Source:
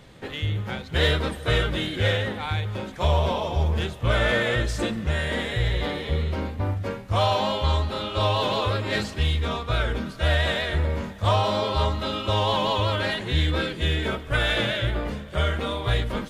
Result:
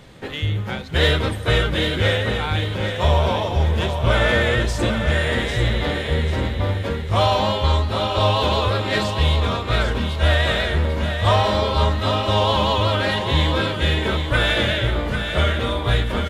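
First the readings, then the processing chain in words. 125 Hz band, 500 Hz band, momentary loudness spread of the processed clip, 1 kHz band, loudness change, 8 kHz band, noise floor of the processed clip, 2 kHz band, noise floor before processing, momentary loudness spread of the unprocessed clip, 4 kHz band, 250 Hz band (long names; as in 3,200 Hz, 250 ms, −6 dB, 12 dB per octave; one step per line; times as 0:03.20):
+5.0 dB, +5.0 dB, 5 LU, +5.0 dB, +5.0 dB, +5.0 dB, −27 dBFS, +5.0 dB, −39 dBFS, 6 LU, +5.0 dB, +5.0 dB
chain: repeating echo 795 ms, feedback 37%, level −7 dB
level +4 dB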